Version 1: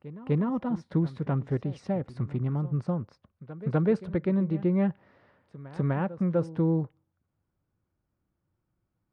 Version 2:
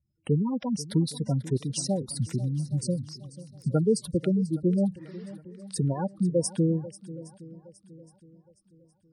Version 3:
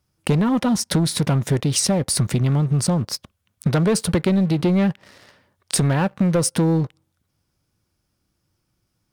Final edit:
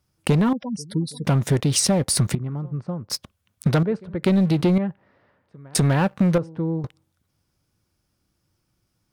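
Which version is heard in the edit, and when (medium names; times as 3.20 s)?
3
0.53–1.25 s: from 2
2.35–3.10 s: from 1
3.83–4.23 s: from 1
4.78–5.75 s: from 1
6.38–6.84 s: from 1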